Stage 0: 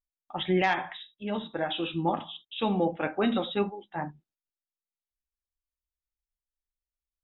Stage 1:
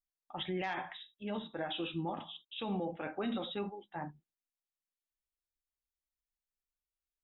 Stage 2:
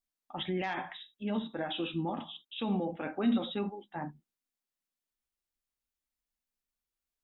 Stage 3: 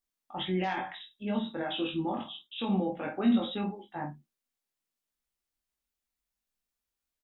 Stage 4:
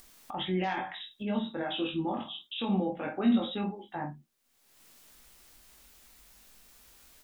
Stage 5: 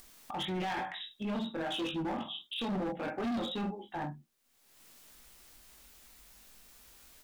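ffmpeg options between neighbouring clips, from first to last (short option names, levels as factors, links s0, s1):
-af "alimiter=limit=0.075:level=0:latency=1:release=35,volume=0.501"
-af "equalizer=f=240:w=3.1:g=8,volume=1.26"
-af "aecho=1:1:21|49:0.708|0.335"
-af "acompressor=mode=upward:threshold=0.0224:ratio=2.5"
-af "volume=37.6,asoftclip=hard,volume=0.0266"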